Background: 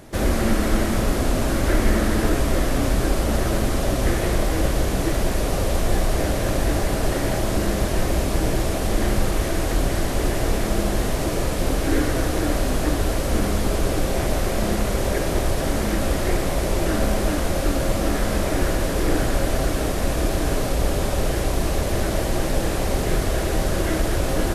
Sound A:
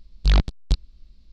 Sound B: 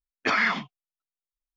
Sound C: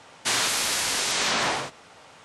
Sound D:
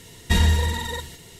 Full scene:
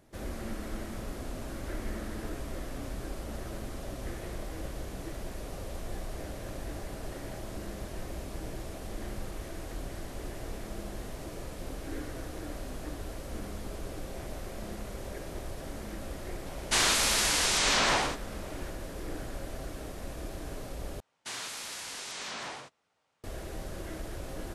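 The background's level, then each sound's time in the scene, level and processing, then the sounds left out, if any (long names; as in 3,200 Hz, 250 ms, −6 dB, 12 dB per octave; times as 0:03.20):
background −18 dB
0:16.46: mix in C −1.5 dB
0:21.00: overwrite with C −15 dB + noise gate −37 dBFS, range −12 dB
not used: A, B, D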